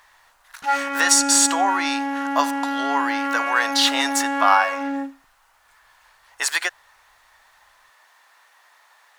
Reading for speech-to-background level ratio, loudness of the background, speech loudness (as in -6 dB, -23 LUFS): 4.0 dB, -24.5 LUFS, -20.5 LUFS